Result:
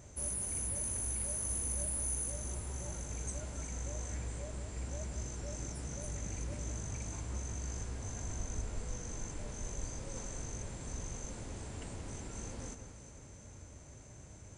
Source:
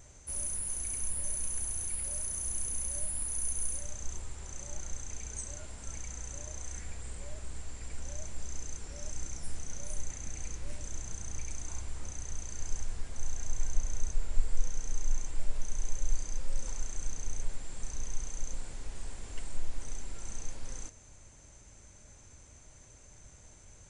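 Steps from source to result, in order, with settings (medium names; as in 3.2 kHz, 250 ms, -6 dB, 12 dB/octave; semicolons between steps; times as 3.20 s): high-pass 74 Hz 12 dB/octave; tilt shelf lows +4.5 dB, about 810 Hz; echo whose repeats swap between lows and highs 296 ms, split 2.5 kHz, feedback 69%, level -8.5 dB; time stretch by phase-locked vocoder 0.61×; trim +4 dB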